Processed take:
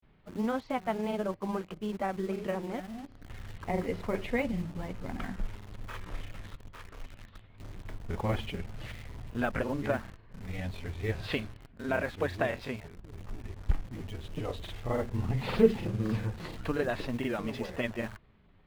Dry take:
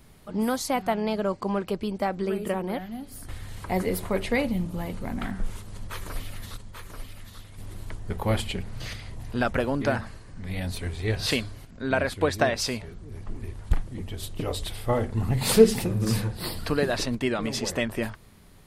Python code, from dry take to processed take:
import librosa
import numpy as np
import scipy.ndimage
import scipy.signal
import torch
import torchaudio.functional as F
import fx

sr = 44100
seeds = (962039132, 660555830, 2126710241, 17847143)

p1 = scipy.signal.sosfilt(scipy.signal.butter(4, 3200.0, 'lowpass', fs=sr, output='sos'), x)
p2 = fx.quant_dither(p1, sr, seeds[0], bits=6, dither='none')
p3 = p1 + F.gain(torch.from_numpy(p2), -6.0).numpy()
p4 = fx.granulator(p3, sr, seeds[1], grain_ms=100.0, per_s=20.0, spray_ms=25.0, spread_st=0)
y = F.gain(torch.from_numpy(p4), -8.0).numpy()